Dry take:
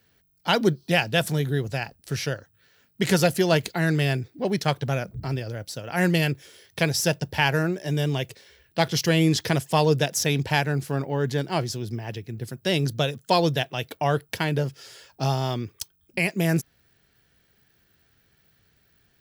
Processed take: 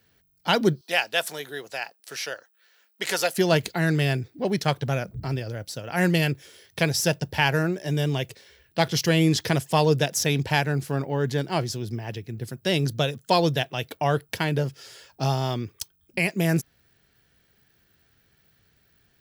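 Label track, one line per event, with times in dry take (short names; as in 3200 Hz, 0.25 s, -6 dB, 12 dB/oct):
0.810000	3.380000	HPF 600 Hz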